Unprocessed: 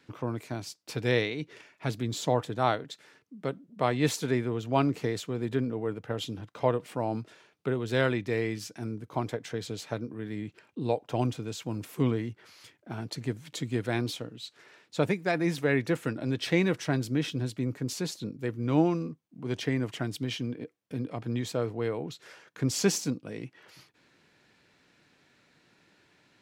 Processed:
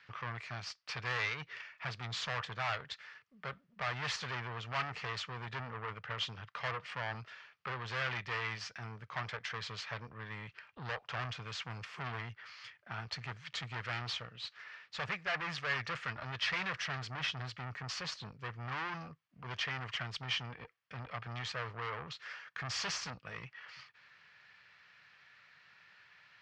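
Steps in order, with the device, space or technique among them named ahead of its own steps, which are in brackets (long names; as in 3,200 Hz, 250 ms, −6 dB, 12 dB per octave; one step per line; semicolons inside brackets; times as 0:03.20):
scooped metal amplifier (tube saturation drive 34 dB, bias 0.65; loudspeaker in its box 99–4,400 Hz, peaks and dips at 1,200 Hz +7 dB, 1,800 Hz +5 dB, 3,800 Hz −7 dB; guitar amp tone stack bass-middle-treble 10-0-10)
level +11 dB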